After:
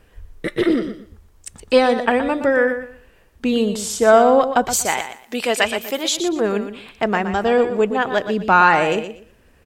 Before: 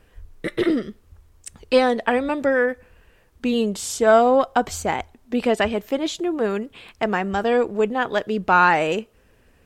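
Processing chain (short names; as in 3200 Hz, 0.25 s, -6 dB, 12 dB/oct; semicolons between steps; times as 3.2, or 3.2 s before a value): 4.73–6.17 tilt +3.5 dB/oct; on a send: feedback echo 0.12 s, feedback 23%, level -10 dB; on the sum: gain +2.5 dB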